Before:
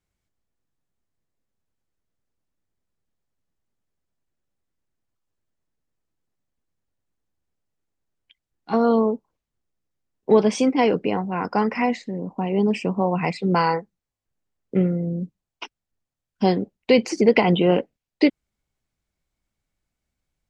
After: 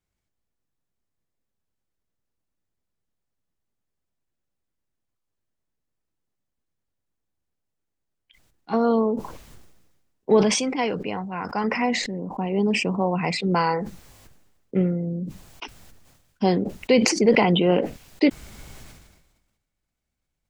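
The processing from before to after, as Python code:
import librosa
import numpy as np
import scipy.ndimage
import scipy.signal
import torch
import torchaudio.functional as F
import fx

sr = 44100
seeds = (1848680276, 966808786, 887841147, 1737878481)

y = fx.peak_eq(x, sr, hz=340.0, db=-6.5, octaves=2.2, at=(10.43, 11.64))
y = fx.sustainer(y, sr, db_per_s=47.0)
y = y * librosa.db_to_amplitude(-2.0)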